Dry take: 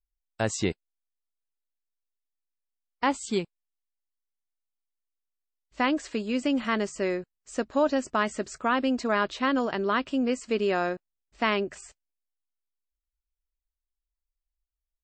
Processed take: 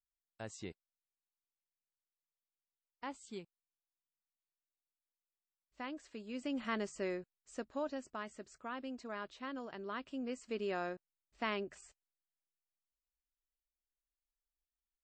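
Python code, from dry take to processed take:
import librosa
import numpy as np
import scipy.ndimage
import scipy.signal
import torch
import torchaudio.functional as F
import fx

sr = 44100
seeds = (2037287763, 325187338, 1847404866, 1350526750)

y = fx.gain(x, sr, db=fx.line((6.08, -19.0), (6.69, -10.5), (7.19, -10.5), (8.24, -18.5), (9.61, -18.5), (10.74, -12.0)))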